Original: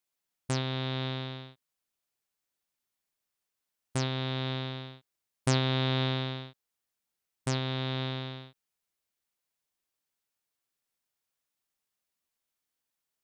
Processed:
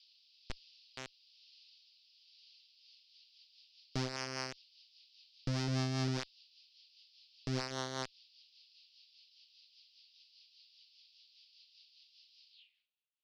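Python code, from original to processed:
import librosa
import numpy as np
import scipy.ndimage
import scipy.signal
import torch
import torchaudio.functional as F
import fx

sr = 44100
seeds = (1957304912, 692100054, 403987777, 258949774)

y = fx.fade_in_head(x, sr, length_s=0.99)
y = fx.echo_wet_bandpass(y, sr, ms=203, feedback_pct=84, hz=650.0, wet_db=-15.0)
y = fx.schmitt(y, sr, flips_db=-29.0)
y = fx.dmg_noise_band(y, sr, seeds[0], low_hz=2600.0, high_hz=4900.0, level_db=-74.0)
y = fx.filter_sweep_lowpass(y, sr, from_hz=5200.0, to_hz=600.0, start_s=12.5, end_s=13.01, q=3.9)
y = fx.rotary_switch(y, sr, hz=1.1, then_hz=5.0, switch_at_s=2.39)
y = F.gain(torch.from_numpy(y), 5.0).numpy()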